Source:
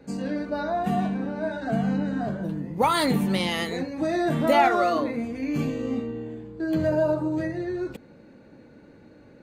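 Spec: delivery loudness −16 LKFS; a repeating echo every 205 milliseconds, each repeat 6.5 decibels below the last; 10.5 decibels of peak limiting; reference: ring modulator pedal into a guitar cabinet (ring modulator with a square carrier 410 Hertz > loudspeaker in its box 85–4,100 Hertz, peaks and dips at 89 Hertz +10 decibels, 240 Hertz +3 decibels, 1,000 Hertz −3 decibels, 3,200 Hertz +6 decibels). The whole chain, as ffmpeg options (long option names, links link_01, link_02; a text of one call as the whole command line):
ffmpeg -i in.wav -af "alimiter=limit=-19dB:level=0:latency=1,aecho=1:1:205|410|615|820|1025|1230:0.473|0.222|0.105|0.0491|0.0231|0.0109,aeval=exprs='val(0)*sgn(sin(2*PI*410*n/s))':channel_layout=same,highpass=85,equalizer=frequency=89:width_type=q:width=4:gain=10,equalizer=frequency=240:width_type=q:width=4:gain=3,equalizer=frequency=1000:width_type=q:width=4:gain=-3,equalizer=frequency=3200:width_type=q:width=4:gain=6,lowpass=frequency=4100:width=0.5412,lowpass=frequency=4100:width=1.3066,volume=10.5dB" out.wav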